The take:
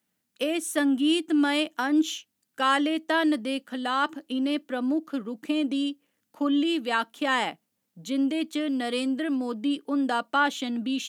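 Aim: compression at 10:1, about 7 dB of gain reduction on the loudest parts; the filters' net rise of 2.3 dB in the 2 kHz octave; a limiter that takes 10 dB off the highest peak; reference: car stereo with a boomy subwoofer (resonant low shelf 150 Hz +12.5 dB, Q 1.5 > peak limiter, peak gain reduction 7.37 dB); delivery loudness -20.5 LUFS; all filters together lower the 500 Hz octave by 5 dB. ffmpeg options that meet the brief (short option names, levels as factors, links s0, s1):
-af "equalizer=f=500:t=o:g=-5.5,equalizer=f=2000:t=o:g=3.5,acompressor=threshold=0.0562:ratio=10,alimiter=level_in=1.12:limit=0.0631:level=0:latency=1,volume=0.891,lowshelf=f=150:t=q:w=1.5:g=12.5,volume=8.91,alimiter=limit=0.237:level=0:latency=1"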